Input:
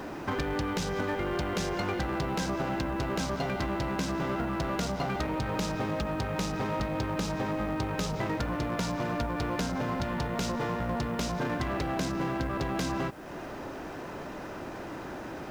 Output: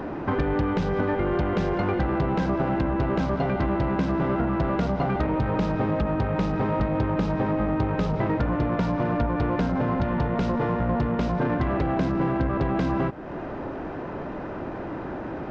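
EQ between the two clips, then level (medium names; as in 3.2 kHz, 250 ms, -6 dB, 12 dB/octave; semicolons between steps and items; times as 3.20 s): tape spacing loss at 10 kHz 37 dB; +8.5 dB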